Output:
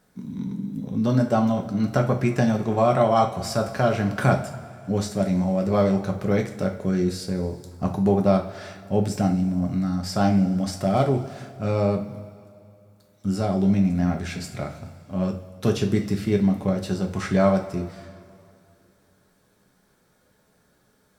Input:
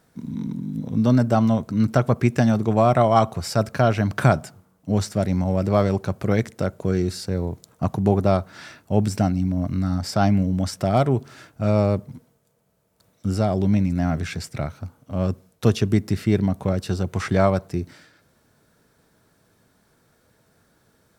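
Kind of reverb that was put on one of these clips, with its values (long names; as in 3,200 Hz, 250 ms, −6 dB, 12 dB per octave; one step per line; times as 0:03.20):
coupled-rooms reverb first 0.35 s, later 2.5 s, from −17 dB, DRR 2.5 dB
level −3.5 dB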